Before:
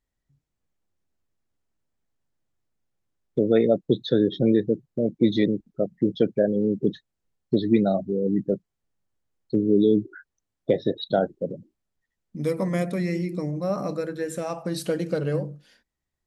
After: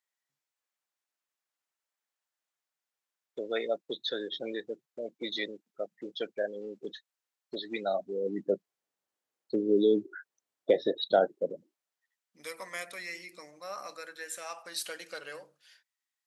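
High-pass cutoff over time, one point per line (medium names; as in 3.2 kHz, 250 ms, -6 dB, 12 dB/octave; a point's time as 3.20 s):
7.71 s 950 Hz
8.53 s 430 Hz
11.44 s 430 Hz
12.46 s 1.4 kHz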